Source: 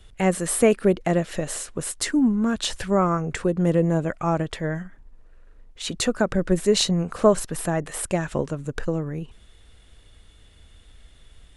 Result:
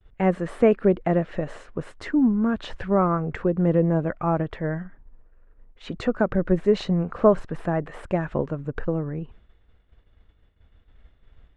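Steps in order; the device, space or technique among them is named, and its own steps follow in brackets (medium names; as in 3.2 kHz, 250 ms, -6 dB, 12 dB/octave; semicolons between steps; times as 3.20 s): hearing-loss simulation (low-pass 1.8 kHz 12 dB/octave; expander -43 dBFS)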